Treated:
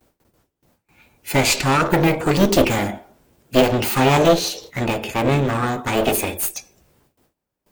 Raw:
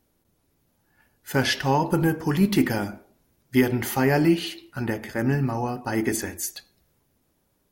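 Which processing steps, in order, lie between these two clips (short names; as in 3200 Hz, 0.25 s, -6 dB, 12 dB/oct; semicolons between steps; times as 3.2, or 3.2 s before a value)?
one-sided clip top -30.5 dBFS; gate with hold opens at -58 dBFS; formant shift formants +6 st; gain +9 dB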